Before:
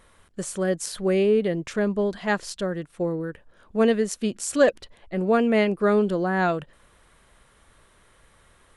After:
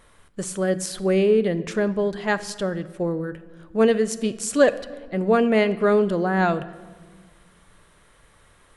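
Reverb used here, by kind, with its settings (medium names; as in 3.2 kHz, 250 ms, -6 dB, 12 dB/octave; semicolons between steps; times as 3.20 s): simulated room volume 1400 m³, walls mixed, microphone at 0.38 m; trim +1.5 dB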